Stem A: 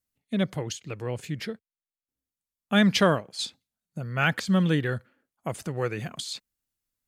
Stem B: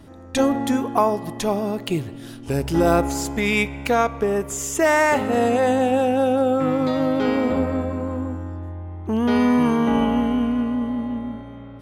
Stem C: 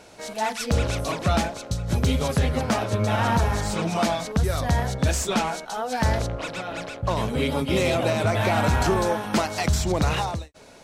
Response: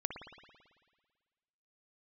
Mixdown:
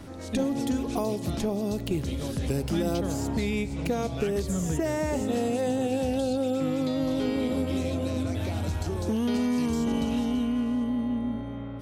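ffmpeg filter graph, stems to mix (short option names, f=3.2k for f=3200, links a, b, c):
-filter_complex "[0:a]volume=-2.5dB[a];[1:a]volume=2.5dB[b];[2:a]volume=-7dB[c];[a][b][c]amix=inputs=3:normalize=0,acrossover=split=560|2900[d][e][f];[d]acompressor=threshold=-26dB:ratio=4[g];[e]acompressor=threshold=-47dB:ratio=4[h];[f]acompressor=threshold=-42dB:ratio=4[i];[g][h][i]amix=inputs=3:normalize=0"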